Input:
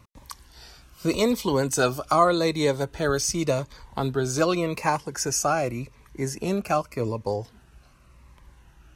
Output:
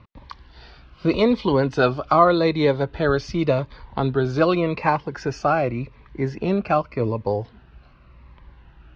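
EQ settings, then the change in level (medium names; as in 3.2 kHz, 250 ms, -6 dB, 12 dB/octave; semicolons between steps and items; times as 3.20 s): resonant low-pass 4.5 kHz, resonance Q 1.7; distance through air 340 m; +5.0 dB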